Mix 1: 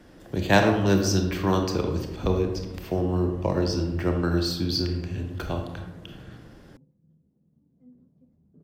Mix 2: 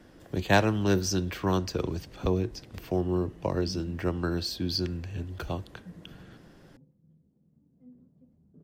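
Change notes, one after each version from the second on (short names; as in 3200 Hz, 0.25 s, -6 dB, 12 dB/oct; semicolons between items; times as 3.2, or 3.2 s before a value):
reverb: off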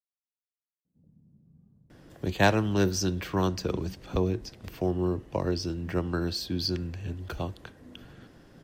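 speech: entry +1.90 s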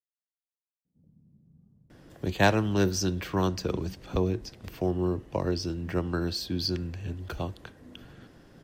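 background: add air absorption 450 m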